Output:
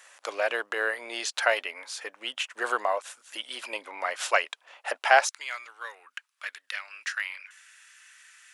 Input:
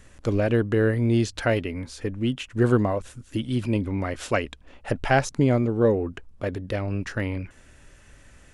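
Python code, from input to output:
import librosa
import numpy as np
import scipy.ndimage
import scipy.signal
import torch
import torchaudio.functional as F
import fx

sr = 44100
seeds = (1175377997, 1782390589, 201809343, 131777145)

y = fx.highpass(x, sr, hz=fx.steps((0.0, 700.0), (5.27, 1400.0)), slope=24)
y = F.gain(torch.from_numpy(y), 4.5).numpy()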